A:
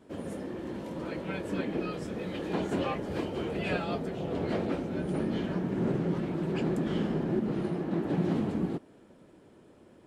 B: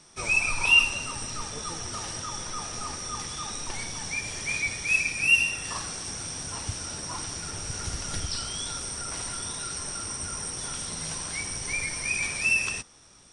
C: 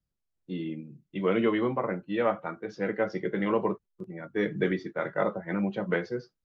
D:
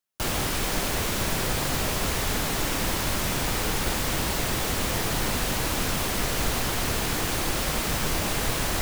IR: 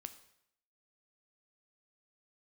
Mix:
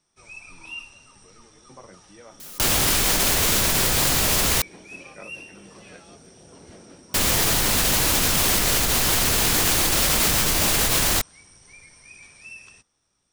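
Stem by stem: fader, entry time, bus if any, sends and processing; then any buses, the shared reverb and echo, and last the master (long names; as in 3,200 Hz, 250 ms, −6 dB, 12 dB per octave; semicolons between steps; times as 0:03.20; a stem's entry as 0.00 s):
−17.0 dB, 2.20 s, no send, no processing
−17.5 dB, 0.00 s, no send, high-shelf EQ 2,700 Hz −9.5 dB
−15.0 dB, 0.00 s, no send, tremolo with a ramp in dB decaying 0.59 Hz, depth 21 dB
−2.0 dB, 2.40 s, muted 0:04.62–0:07.14, no send, envelope flattener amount 100%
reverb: not used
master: high-shelf EQ 2,700 Hz +8.5 dB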